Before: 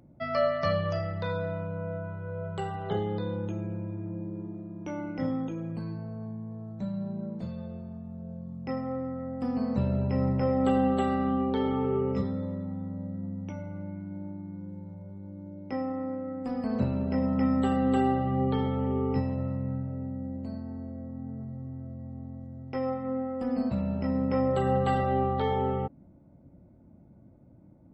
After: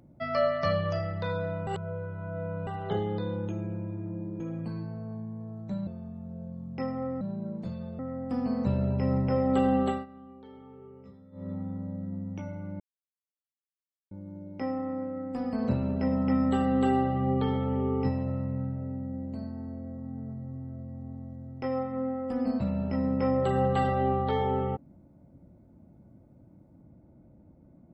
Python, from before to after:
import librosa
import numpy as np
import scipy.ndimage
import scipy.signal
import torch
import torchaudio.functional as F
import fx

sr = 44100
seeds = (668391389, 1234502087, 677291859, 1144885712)

y = fx.edit(x, sr, fx.reverse_span(start_s=1.67, length_s=1.0),
    fx.cut(start_s=4.4, length_s=1.11),
    fx.move(start_s=6.98, length_s=0.78, to_s=9.1),
    fx.fade_down_up(start_s=10.97, length_s=1.66, db=-21.5, fade_s=0.2),
    fx.silence(start_s=13.91, length_s=1.31), tone=tone)